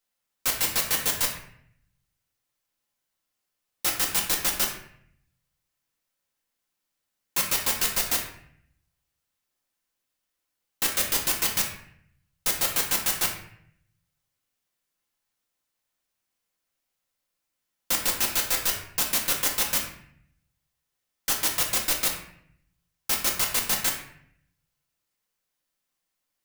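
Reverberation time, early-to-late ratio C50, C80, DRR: 0.65 s, 6.0 dB, 9.0 dB, 0.0 dB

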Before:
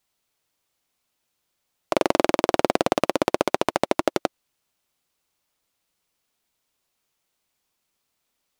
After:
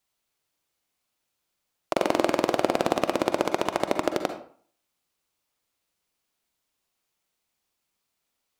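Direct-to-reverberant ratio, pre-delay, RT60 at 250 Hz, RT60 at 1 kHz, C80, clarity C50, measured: 7.0 dB, 40 ms, 0.50 s, 0.50 s, 12.5 dB, 8.0 dB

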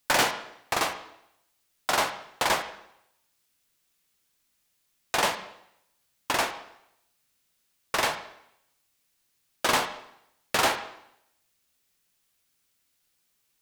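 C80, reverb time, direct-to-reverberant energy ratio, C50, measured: 13.5 dB, 0.75 s, 7.0 dB, 11.0 dB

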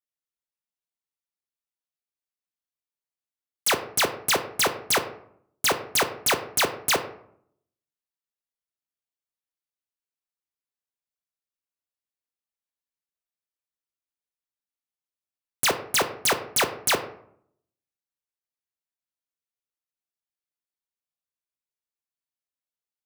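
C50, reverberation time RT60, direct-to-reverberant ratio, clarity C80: 12.0 dB, 0.65 s, 7.0 dB, 15.0 dB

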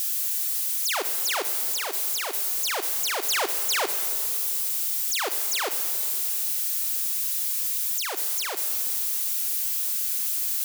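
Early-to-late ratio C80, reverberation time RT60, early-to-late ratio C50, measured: 11.0 dB, 2.6 s, 10.0 dB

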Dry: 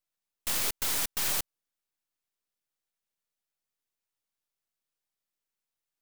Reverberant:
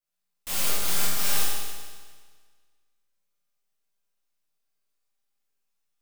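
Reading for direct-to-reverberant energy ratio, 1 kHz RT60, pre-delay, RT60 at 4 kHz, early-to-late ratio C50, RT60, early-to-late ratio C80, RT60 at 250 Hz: -9.5 dB, 1.6 s, 12 ms, 1.6 s, -2.5 dB, 1.6 s, 0.0 dB, 1.6 s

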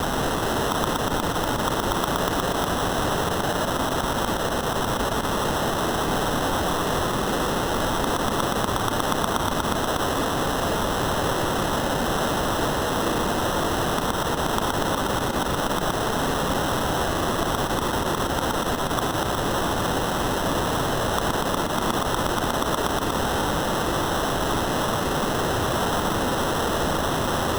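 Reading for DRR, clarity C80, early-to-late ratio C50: 7.5 dB, 8.5 dB, 8.0 dB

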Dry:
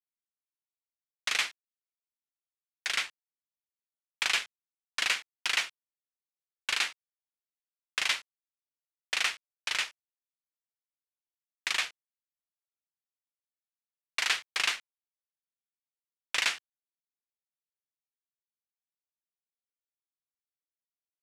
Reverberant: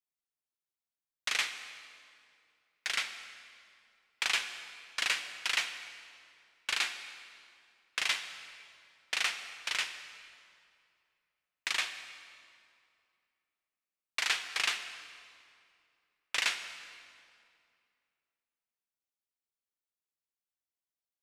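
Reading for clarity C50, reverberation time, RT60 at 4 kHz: 9.5 dB, 2.4 s, 1.9 s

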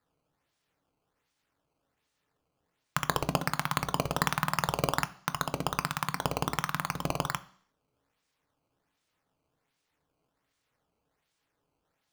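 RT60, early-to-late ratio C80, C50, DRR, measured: 0.55 s, 22.0 dB, 18.5 dB, 11.0 dB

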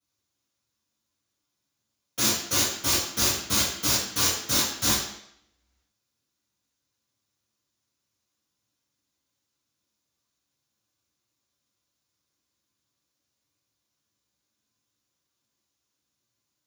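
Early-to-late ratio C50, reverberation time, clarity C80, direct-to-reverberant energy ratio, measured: 2.0 dB, 0.75 s, 5.5 dB, -12.0 dB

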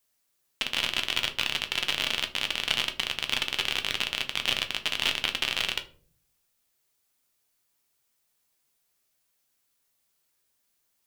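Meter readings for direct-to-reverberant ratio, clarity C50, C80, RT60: 5.5 dB, 15.0 dB, 19.5 dB, 0.45 s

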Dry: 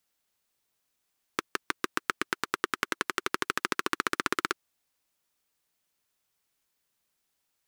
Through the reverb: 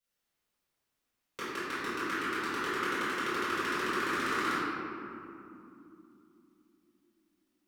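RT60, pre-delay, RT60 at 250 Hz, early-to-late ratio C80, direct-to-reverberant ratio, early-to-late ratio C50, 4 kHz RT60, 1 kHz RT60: 2.9 s, 3 ms, 4.6 s, -2.0 dB, -15.5 dB, -5.0 dB, 1.3 s, 2.6 s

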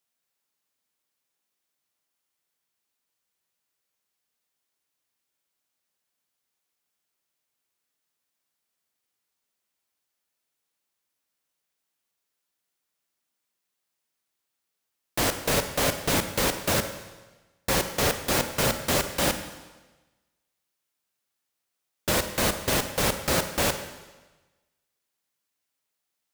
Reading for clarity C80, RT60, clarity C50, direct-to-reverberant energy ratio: 11.0 dB, 1.2 s, 9.0 dB, 8.0 dB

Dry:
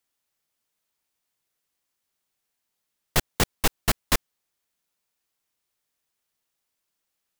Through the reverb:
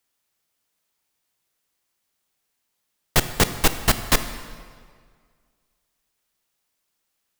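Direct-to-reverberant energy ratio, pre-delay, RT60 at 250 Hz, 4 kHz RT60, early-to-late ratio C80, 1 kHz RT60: 10.0 dB, 17 ms, 1.9 s, 1.5 s, 12.0 dB, 1.9 s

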